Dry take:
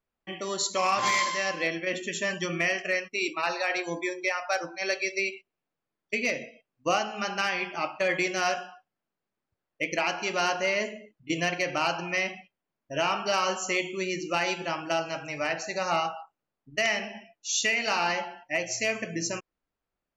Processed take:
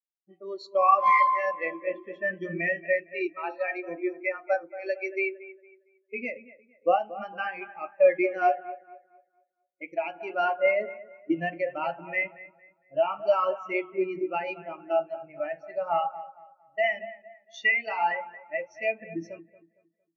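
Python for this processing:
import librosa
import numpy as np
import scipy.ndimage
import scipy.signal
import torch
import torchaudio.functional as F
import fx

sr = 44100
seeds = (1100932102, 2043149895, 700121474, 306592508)

y = scipy.signal.sosfilt(scipy.signal.butter(4, 5800.0, 'lowpass', fs=sr, output='sos'), x)
y = fx.env_lowpass(y, sr, base_hz=390.0, full_db=-27.5)
y = fx.echo_bbd(y, sr, ms=229, stages=4096, feedback_pct=63, wet_db=-7.0)
y = fx.spectral_expand(y, sr, expansion=2.5)
y = y * 10.0 ** (4.0 / 20.0)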